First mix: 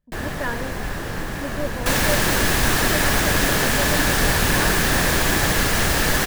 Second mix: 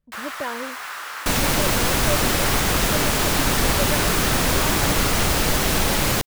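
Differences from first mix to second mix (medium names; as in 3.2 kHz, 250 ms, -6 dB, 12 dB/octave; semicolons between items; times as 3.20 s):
first sound: add resonant high-pass 1.3 kHz, resonance Q 2.1; second sound: entry -0.60 s; master: add peaking EQ 1.7 kHz -10 dB 0.22 oct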